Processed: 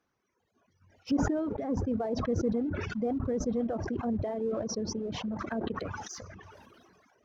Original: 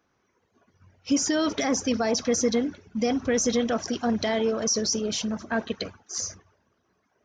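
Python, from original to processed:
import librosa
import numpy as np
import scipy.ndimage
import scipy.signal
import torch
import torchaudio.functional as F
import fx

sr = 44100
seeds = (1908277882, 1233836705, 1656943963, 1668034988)

p1 = fx.env_lowpass_down(x, sr, base_hz=630.0, full_db=-24.5)
p2 = fx.dereverb_blind(p1, sr, rt60_s=0.87)
p3 = np.sign(p2) * np.maximum(np.abs(p2) - 10.0 ** (-45.0 / 20.0), 0.0)
p4 = p2 + (p3 * 10.0 ** (-10.0 / 20.0))
p5 = fx.sustainer(p4, sr, db_per_s=24.0)
y = p5 * 10.0 ** (-7.5 / 20.0)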